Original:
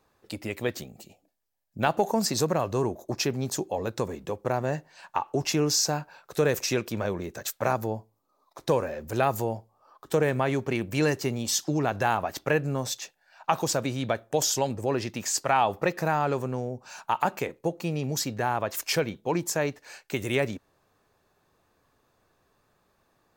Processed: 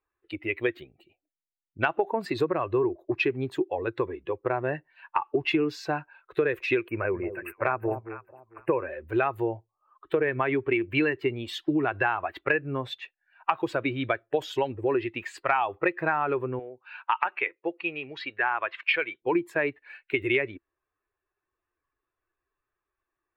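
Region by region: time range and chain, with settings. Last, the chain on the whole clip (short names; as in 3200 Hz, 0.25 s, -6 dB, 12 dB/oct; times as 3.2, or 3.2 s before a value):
6.88–8.8 brick-wall FIR band-stop 2900–8000 Hz + bell 10000 Hz +5 dB 1.8 oct + echo with dull and thin repeats by turns 0.224 s, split 900 Hz, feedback 57%, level -8 dB
16.59–19.22 Gaussian blur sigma 2.2 samples + tilt +4 dB/oct
whole clip: per-bin expansion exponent 1.5; EQ curve 130 Hz 0 dB, 210 Hz -7 dB, 340 Hz +14 dB, 570 Hz +4 dB, 1700 Hz +14 dB, 2500 Hz +14 dB, 3700 Hz +2 dB, 5900 Hz -24 dB, 9200 Hz -17 dB; compressor, threshold -21 dBFS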